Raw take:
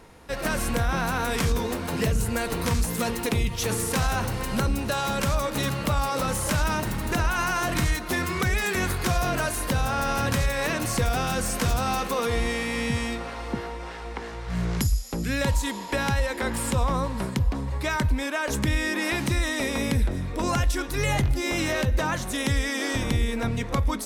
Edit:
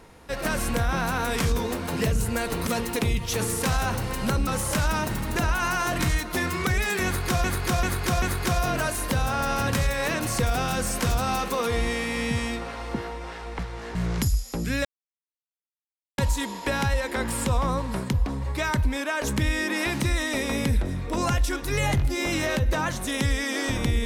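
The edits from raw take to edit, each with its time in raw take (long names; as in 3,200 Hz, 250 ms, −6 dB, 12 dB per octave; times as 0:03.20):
0:02.67–0:02.97: remove
0:04.77–0:06.23: remove
0:08.81–0:09.20: repeat, 4 plays
0:14.18–0:14.54: reverse
0:15.44: splice in silence 1.33 s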